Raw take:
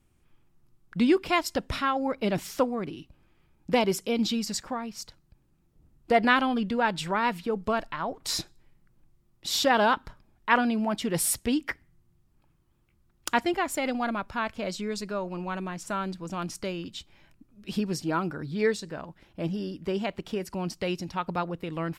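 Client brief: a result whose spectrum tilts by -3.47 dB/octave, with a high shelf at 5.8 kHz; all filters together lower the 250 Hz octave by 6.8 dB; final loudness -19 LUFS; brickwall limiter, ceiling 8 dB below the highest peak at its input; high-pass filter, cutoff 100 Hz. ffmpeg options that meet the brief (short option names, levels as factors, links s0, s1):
-af "highpass=100,equalizer=f=250:t=o:g=-8.5,highshelf=f=5800:g=5.5,volume=3.76,alimiter=limit=0.708:level=0:latency=1"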